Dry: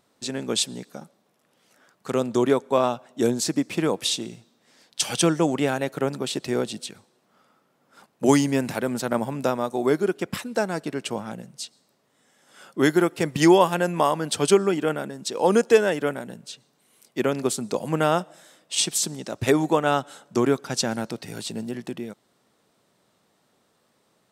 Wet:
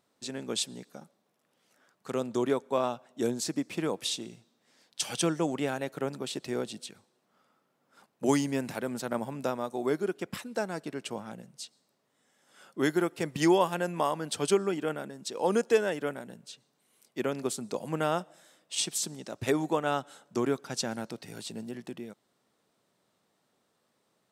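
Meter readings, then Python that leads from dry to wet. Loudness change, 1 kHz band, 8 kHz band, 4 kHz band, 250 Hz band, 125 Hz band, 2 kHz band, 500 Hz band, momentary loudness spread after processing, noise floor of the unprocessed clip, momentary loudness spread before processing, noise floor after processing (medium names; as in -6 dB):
-7.5 dB, -7.5 dB, -7.5 dB, -7.5 dB, -8.0 dB, -8.5 dB, -7.5 dB, -7.5 dB, 16 LU, -68 dBFS, 16 LU, -75 dBFS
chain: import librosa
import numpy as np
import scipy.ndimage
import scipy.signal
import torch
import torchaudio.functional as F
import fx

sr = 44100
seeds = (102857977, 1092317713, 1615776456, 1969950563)

y = fx.low_shelf(x, sr, hz=62.0, db=-6.5)
y = y * librosa.db_to_amplitude(-7.5)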